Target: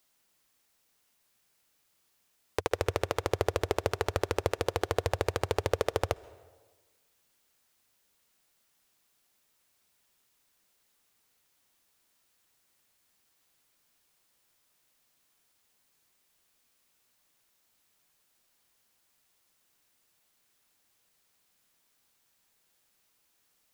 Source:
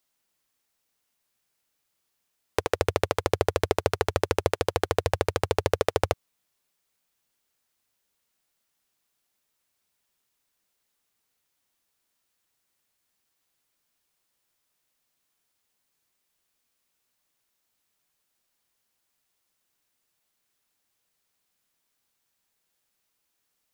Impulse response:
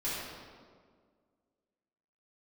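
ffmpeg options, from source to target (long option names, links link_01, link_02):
-filter_complex "[0:a]alimiter=limit=-14.5dB:level=0:latency=1:release=112,asplit=2[link_01][link_02];[1:a]atrim=start_sample=2205,asetrate=66150,aresample=44100,adelay=127[link_03];[link_02][link_03]afir=irnorm=-1:irlink=0,volume=-24.5dB[link_04];[link_01][link_04]amix=inputs=2:normalize=0,volume=5dB"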